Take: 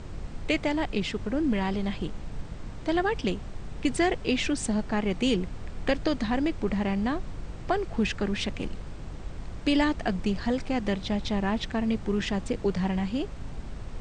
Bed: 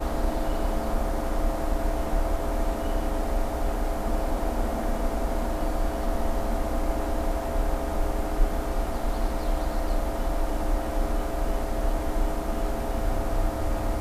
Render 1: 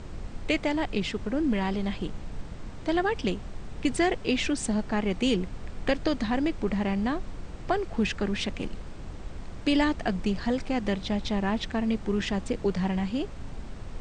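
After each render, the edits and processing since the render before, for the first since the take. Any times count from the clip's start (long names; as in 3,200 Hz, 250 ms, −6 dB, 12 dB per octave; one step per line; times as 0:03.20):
hum removal 50 Hz, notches 3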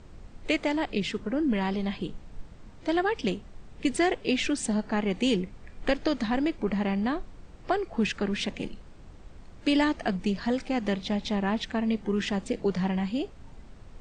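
noise reduction from a noise print 9 dB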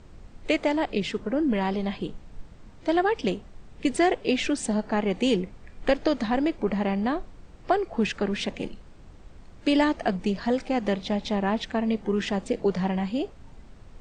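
dynamic equaliser 610 Hz, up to +5 dB, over −40 dBFS, Q 0.83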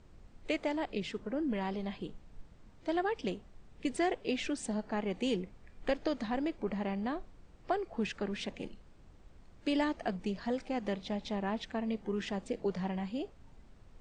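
level −9.5 dB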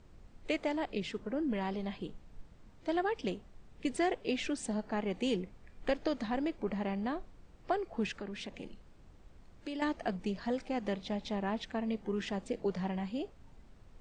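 0:08.16–0:09.82: downward compressor 2.5 to 1, threshold −40 dBFS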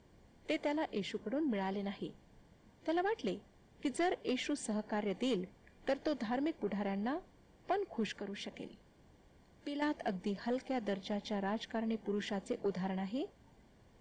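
notch comb filter 1,300 Hz
soft clipping −26 dBFS, distortion −19 dB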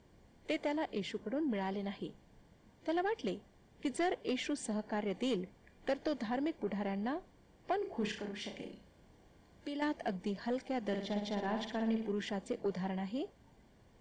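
0:07.78–0:09.69: flutter between parallel walls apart 5.8 metres, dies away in 0.37 s
0:10.82–0:12.12: flutter between parallel walls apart 10 metres, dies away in 0.6 s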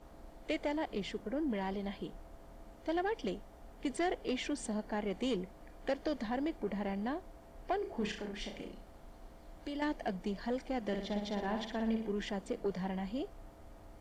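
mix in bed −27.5 dB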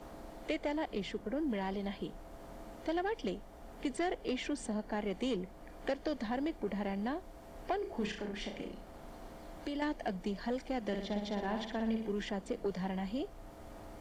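multiband upward and downward compressor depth 40%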